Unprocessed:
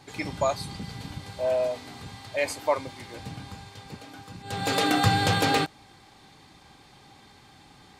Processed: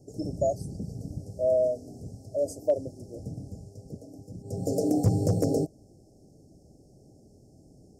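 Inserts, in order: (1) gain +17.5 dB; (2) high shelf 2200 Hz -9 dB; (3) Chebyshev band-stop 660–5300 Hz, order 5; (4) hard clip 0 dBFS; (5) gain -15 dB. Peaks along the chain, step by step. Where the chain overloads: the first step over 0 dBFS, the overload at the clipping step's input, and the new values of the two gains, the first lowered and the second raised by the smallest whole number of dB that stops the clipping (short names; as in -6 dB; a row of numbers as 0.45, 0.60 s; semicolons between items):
+8.5, +8.0, +5.0, 0.0, -15.0 dBFS; step 1, 5.0 dB; step 1 +12.5 dB, step 5 -10 dB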